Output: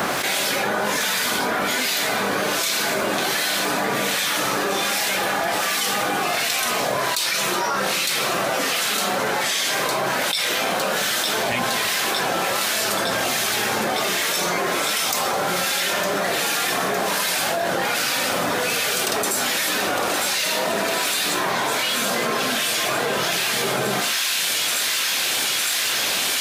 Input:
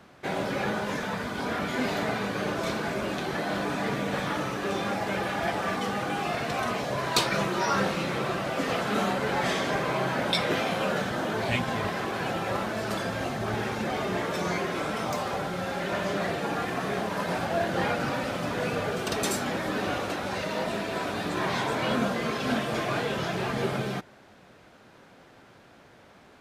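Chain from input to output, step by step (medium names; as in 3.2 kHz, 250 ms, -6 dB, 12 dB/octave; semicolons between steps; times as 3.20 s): RIAA curve recording; de-hum 54.04 Hz, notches 32; in parallel at -8.5 dB: saturation -15 dBFS, distortion -17 dB; on the sum: harmonic tremolo 1.3 Hz, depth 70%, crossover 1.8 kHz; on a send: feedback echo behind a high-pass 908 ms, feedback 79%, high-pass 2.4 kHz, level -12 dB; on the sum: level flattener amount 100%; trim -8.5 dB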